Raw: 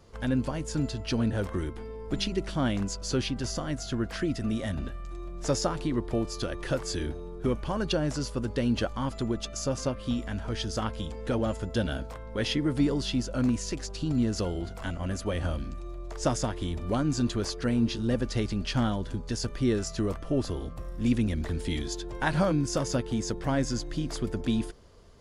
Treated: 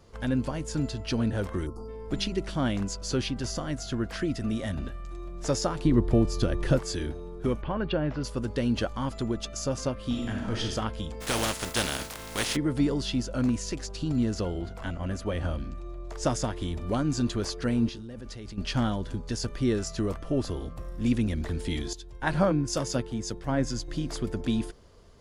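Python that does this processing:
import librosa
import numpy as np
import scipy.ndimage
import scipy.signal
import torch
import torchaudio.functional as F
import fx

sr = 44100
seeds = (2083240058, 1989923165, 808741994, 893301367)

y = fx.spec_erase(x, sr, start_s=1.67, length_s=0.22, low_hz=1400.0, high_hz=4300.0)
y = fx.low_shelf(y, sr, hz=380.0, db=10.0, at=(5.85, 6.79))
y = fx.lowpass(y, sr, hz=3100.0, slope=24, at=(7.61, 8.23), fade=0.02)
y = fx.reverb_throw(y, sr, start_s=10.06, length_s=0.59, rt60_s=0.86, drr_db=0.5)
y = fx.spec_flatten(y, sr, power=0.35, at=(11.2, 12.55), fade=0.02)
y = fx.high_shelf(y, sr, hz=4900.0, db=-7.0, at=(14.34, 16.07))
y = fx.level_steps(y, sr, step_db=20, at=(17.89, 18.58))
y = fx.band_widen(y, sr, depth_pct=100, at=(21.93, 23.88))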